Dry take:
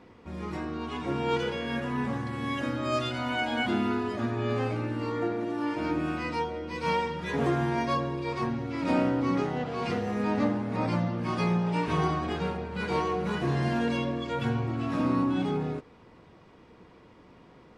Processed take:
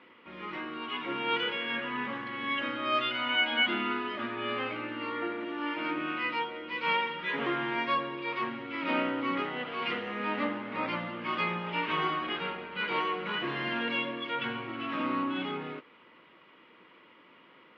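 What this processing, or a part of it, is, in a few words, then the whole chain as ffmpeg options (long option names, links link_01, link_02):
phone earpiece: -af "highpass=360,equalizer=frequency=440:width_type=q:width=4:gain=-6,equalizer=frequency=730:width_type=q:width=4:gain=-9,equalizer=frequency=1300:width_type=q:width=4:gain=4,equalizer=frequency=2100:width_type=q:width=4:gain=6,equalizer=frequency=3000:width_type=q:width=4:gain=9,lowpass=frequency=3600:width=0.5412,lowpass=frequency=3600:width=1.3066"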